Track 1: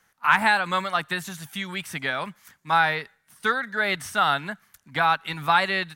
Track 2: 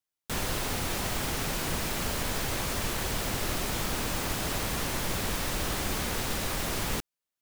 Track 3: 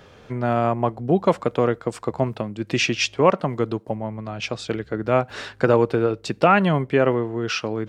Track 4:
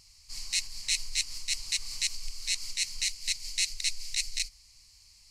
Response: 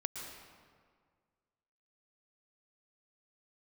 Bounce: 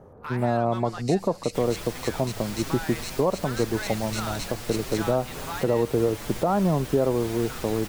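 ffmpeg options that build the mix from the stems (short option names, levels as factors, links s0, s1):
-filter_complex "[0:a]alimiter=limit=0.224:level=0:latency=1:release=26,volume=7.94,asoftclip=hard,volume=0.126,volume=0.282[s0];[1:a]asplit=2[s1][s2];[s2]adelay=6.5,afreqshift=1.8[s3];[s1][s3]amix=inputs=2:normalize=1,adelay=1250,volume=0.75[s4];[2:a]lowpass=f=1000:w=0.5412,lowpass=f=1000:w=1.3066,volume=1.06[s5];[3:a]adelay=550,volume=0.266,asplit=2[s6][s7];[s7]volume=0.562[s8];[4:a]atrim=start_sample=2205[s9];[s8][s9]afir=irnorm=-1:irlink=0[s10];[s0][s4][s5][s6][s10]amix=inputs=5:normalize=0,alimiter=limit=0.251:level=0:latency=1:release=224"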